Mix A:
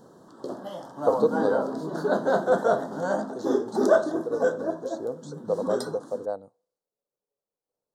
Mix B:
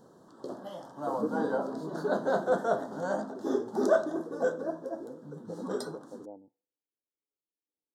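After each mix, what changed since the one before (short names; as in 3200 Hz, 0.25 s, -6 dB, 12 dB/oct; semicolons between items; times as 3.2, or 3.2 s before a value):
speech: add vocal tract filter u; background -5.0 dB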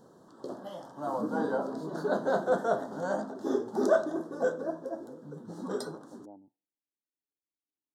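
speech: add bell 490 Hz -14 dB 0.35 oct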